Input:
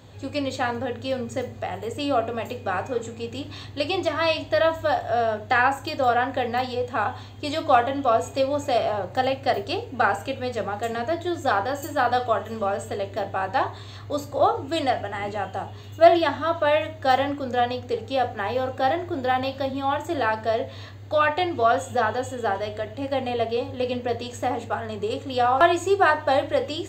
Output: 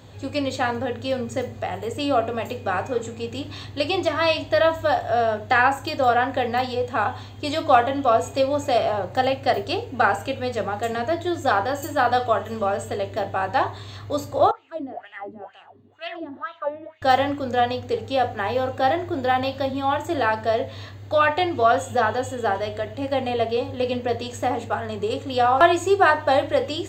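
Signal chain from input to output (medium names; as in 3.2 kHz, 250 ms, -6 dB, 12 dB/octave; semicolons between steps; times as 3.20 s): 14.51–17.02 s: wah-wah 2.1 Hz 220–2900 Hz, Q 4.4; trim +2 dB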